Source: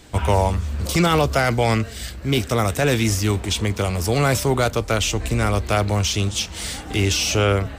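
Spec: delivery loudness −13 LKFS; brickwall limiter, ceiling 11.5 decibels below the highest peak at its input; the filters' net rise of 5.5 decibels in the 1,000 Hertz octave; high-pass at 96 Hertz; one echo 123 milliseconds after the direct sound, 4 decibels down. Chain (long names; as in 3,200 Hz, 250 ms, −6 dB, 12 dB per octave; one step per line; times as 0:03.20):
high-pass filter 96 Hz
parametric band 1,000 Hz +7.5 dB
brickwall limiter −13.5 dBFS
single-tap delay 123 ms −4 dB
level +9 dB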